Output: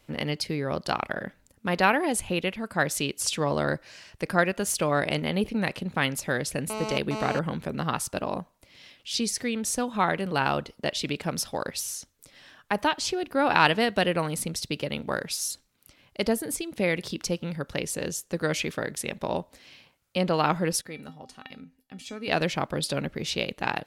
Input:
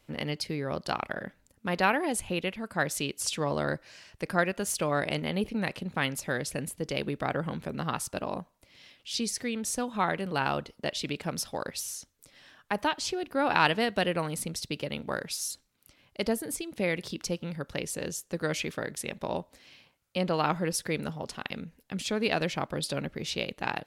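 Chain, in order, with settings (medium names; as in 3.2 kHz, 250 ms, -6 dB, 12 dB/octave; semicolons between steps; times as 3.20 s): 6.70–7.39 s: mobile phone buzz -36 dBFS; 20.81–22.28 s: feedback comb 260 Hz, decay 0.22 s, harmonics odd, mix 80%; trim +3.5 dB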